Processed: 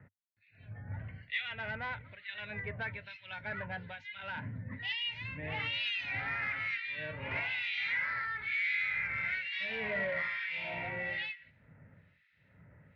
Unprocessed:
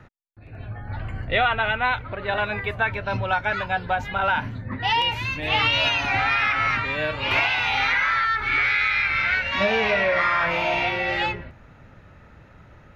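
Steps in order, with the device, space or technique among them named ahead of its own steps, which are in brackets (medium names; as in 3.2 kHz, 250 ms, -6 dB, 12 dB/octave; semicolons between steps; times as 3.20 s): guitar amplifier with harmonic tremolo (harmonic tremolo 1.1 Hz, depth 100%, crossover 2 kHz; saturation -19.5 dBFS, distortion -18 dB; cabinet simulation 87–4200 Hz, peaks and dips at 98 Hz +4 dB, 160 Hz +6 dB, 350 Hz -8 dB, 780 Hz -8 dB, 1.2 kHz -10 dB, 2 kHz +8 dB); trim -9 dB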